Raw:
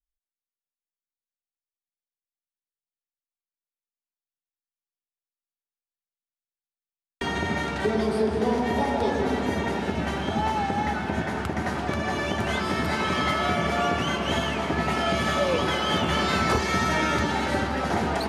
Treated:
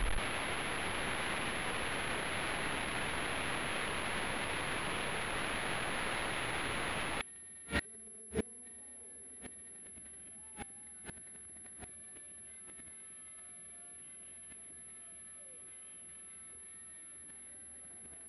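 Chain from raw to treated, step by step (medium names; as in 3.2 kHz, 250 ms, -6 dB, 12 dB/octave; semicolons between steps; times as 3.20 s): jump at every zero crossing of -31.5 dBFS; graphic EQ 125/1000/2000/4000/8000 Hz -3/-11/+9/+6/-10 dB; compression 6:1, threshold -35 dBFS, peak gain reduction 16 dB; pre-echo 41 ms -16 dB; sample-rate reducer 5.8 kHz, jitter 20%; inverted gate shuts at -29 dBFS, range -33 dB; distance through air 230 m; whistle 11 kHz -57 dBFS; trim +8 dB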